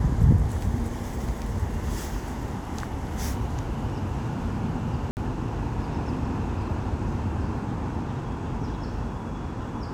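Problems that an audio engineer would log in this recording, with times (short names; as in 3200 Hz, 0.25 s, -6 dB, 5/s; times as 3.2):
5.11–5.17 gap 59 ms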